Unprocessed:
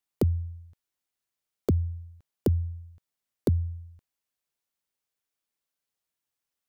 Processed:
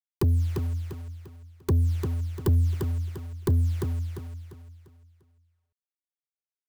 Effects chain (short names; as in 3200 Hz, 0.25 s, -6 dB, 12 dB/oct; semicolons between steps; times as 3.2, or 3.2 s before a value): Wiener smoothing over 41 samples; elliptic band-stop 400–850 Hz, stop band 40 dB; comb 2 ms, depth 60%; dynamic EQ 120 Hz, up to +4 dB, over -36 dBFS, Q 2.8; in parallel at -2 dB: limiter -23 dBFS, peak gain reduction 10.5 dB; on the sum: requantised 8-bit, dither none; soft clip -20 dBFS, distortion -11 dB; on a send: feedback echo 0.347 s, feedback 37%, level -5 dB; on the sum: gain +2 dB